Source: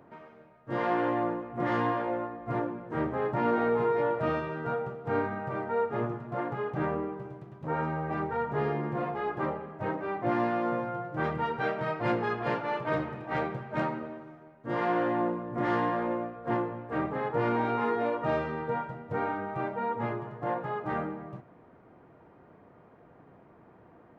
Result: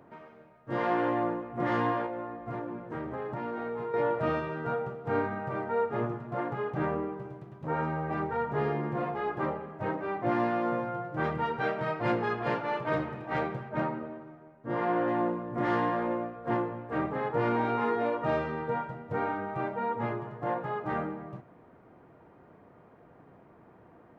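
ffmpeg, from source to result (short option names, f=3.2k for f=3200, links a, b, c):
-filter_complex "[0:a]asettb=1/sr,asplit=3[a][b][c];[a]atrim=end=2.064[d];[b]atrim=start=2.06:end=3.94,asetpts=PTS-STARTPTS,afade=t=in:d=0.004:c=qsin,afade=t=out:st=1.876:d=0.004:c=qsin,acompressor=threshold=-32dB:ratio=6:attack=3.2:release=140:knee=1:detection=peak[e];[c]atrim=start=3.936[f];[d][e]acrossfade=d=0.004:c1=hsin:c2=qsin[g];[g][f]acrossfade=d=0.004:c1=qsin:c2=hsin,asettb=1/sr,asplit=3[h][i][j];[h]atrim=end=13.694[k];[i]atrim=start=13.69:end=15.08,asetpts=PTS-STARTPTS,afade=t=in:d=0.004:c=qsin,afade=t=out:st=1.386:d=0.004:c=qsin,highshelf=f=2.9k:g=-10[l];[j]atrim=start=15.076[m];[k][l]acrossfade=d=0.004:c1=hsin:c2=qsin[n];[n][m]acrossfade=d=0.004:c1=qsin:c2=hsin"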